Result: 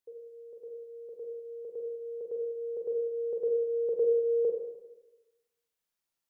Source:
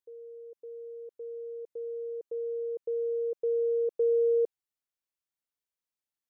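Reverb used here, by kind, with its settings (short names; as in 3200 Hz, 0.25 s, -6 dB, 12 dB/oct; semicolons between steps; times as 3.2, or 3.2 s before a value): Schroeder reverb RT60 1.1 s, combs from 33 ms, DRR -0.5 dB; gain +2 dB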